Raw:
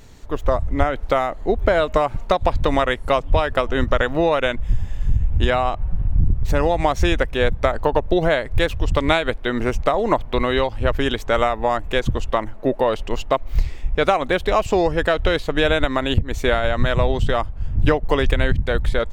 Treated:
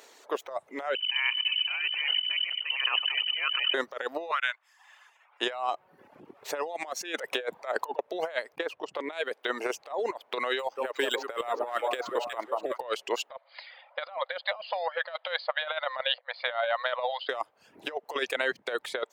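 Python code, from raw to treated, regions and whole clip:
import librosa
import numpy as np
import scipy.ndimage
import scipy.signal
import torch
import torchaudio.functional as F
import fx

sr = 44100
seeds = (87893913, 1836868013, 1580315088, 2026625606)

y = fx.chain(x, sr, fx.over_compress(threshold_db=-28.0, ratio=-1.0),
    fx.echo_feedback(ms=97, feedback_pct=56, wet_db=-6.5),
    fx.freq_invert(carrier_hz=3000), at=(0.95, 3.74))
y = fx.chain(y, sr, fx.highpass(hz=990.0, slope=24),
    fx.high_shelf(hz=3200.0, db=-11.5), at=(4.31, 5.41))
y = fx.chain(y, sr, fx.highpass(hz=74.0, slope=24),
    fx.over_compress(threshold_db=-25.0, ratio=-0.5), at=(7.01, 7.99))
y = fx.chain(y, sr, fx.lowpass(hz=1800.0, slope=6),
    fx.transformer_sat(knee_hz=83.0), at=(8.55, 9.13))
y = fx.chain(y, sr, fx.echo_alternate(ms=182, hz=1200.0, feedback_pct=67, wet_db=-8.0),
    fx.resample_linear(factor=4), at=(10.59, 12.78))
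y = fx.chain(y, sr, fx.brickwall_bandpass(low_hz=500.0, high_hz=5000.0),
    fx.notch(hz=2600.0, q=11.0), at=(13.3, 17.29))
y = fx.dereverb_blind(y, sr, rt60_s=0.6)
y = scipy.signal.sosfilt(scipy.signal.butter(4, 420.0, 'highpass', fs=sr, output='sos'), y)
y = fx.over_compress(y, sr, threshold_db=-25.0, ratio=-0.5)
y = y * 10.0 ** (-4.0 / 20.0)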